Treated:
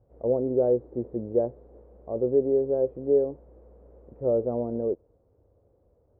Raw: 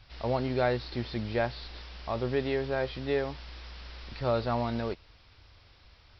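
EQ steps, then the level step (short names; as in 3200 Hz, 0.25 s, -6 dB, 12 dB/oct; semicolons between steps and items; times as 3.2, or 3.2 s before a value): HPF 120 Hz 6 dB/oct; dynamic EQ 320 Hz, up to +5 dB, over -42 dBFS, Q 1.5; ladder low-pass 560 Hz, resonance 60%; +8.5 dB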